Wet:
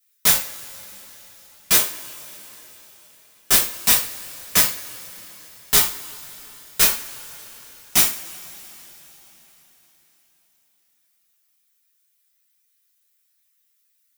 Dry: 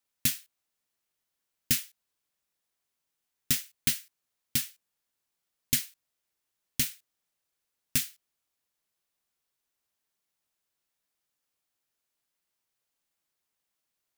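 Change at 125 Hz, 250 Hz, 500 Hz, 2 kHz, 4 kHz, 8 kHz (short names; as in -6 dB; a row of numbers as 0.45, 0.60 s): +2.5, +5.0, +22.5, +14.0, +12.0, +13.0 dB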